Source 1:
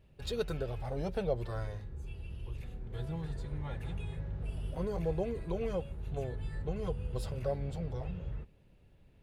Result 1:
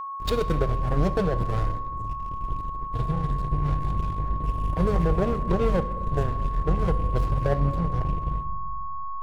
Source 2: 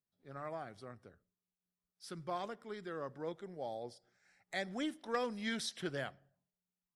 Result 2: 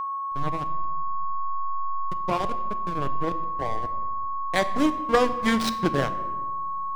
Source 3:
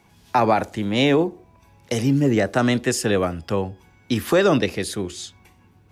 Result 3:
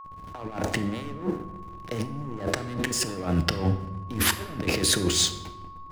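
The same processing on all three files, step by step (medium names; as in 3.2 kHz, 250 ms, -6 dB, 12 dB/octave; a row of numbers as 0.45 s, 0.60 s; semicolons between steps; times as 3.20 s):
gate with hold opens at -50 dBFS; compressor with a negative ratio -32 dBFS, ratio -1; hysteresis with a dead band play -32 dBFS; whistle 1.1 kHz -44 dBFS; simulated room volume 700 m³, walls mixed, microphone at 0.47 m; normalise loudness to -27 LUFS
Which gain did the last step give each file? +13.0 dB, +17.0 dB, +3.0 dB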